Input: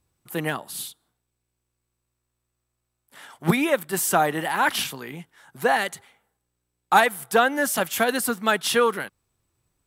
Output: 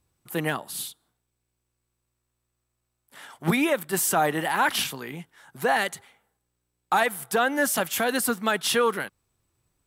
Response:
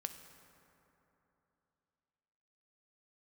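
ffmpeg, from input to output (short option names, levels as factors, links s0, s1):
-af "alimiter=limit=0.251:level=0:latency=1:release=33"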